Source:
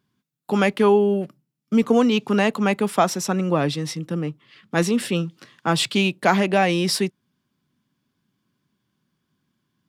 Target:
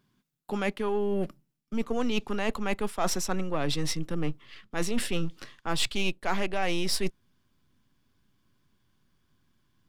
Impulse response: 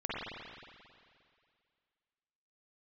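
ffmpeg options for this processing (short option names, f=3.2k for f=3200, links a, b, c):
-af "aeval=exprs='if(lt(val(0),0),0.708*val(0),val(0))':c=same,areverse,acompressor=threshold=-27dB:ratio=20,areverse,asubboost=boost=8.5:cutoff=57,aeval=exprs='0.141*(cos(1*acos(clip(val(0)/0.141,-1,1)))-cos(1*PI/2))+0.00316*(cos(8*acos(clip(val(0)/0.141,-1,1)))-cos(8*PI/2))':c=same,volume=3dB"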